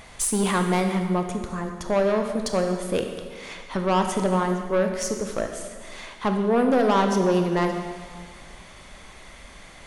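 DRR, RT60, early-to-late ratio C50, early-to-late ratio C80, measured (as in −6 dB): 4.5 dB, 1.8 s, 5.5 dB, 7.0 dB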